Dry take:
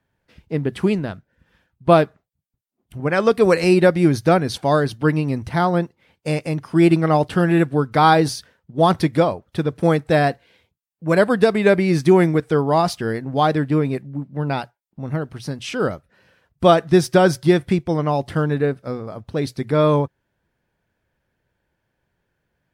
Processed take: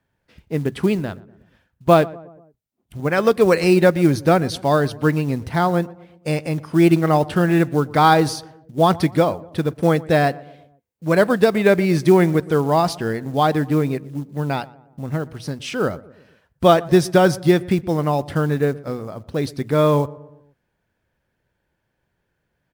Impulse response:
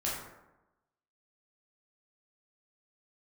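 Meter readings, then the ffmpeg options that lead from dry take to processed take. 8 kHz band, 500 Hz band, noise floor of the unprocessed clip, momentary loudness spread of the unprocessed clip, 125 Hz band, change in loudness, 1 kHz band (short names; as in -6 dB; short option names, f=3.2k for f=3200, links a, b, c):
+1.0 dB, 0.0 dB, -75 dBFS, 13 LU, 0.0 dB, 0.0 dB, 0.0 dB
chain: -filter_complex "[0:a]acrusher=bits=7:mode=log:mix=0:aa=0.000001,asplit=2[a][b];[b]adelay=120,lowpass=f=1.3k:p=1,volume=-19.5dB,asplit=2[c][d];[d]adelay=120,lowpass=f=1.3k:p=1,volume=0.53,asplit=2[e][f];[f]adelay=120,lowpass=f=1.3k:p=1,volume=0.53,asplit=2[g][h];[h]adelay=120,lowpass=f=1.3k:p=1,volume=0.53[i];[a][c][e][g][i]amix=inputs=5:normalize=0"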